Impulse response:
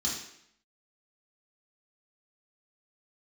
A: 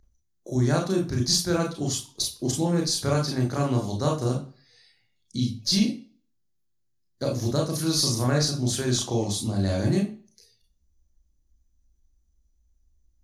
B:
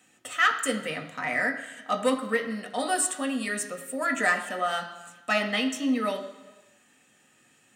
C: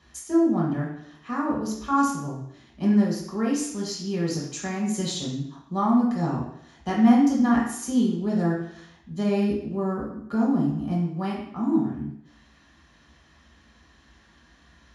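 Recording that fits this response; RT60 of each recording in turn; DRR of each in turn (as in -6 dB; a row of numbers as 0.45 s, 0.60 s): C; 0.40 s, 1.2 s, 0.70 s; 0.0 dB, 3.0 dB, -5.5 dB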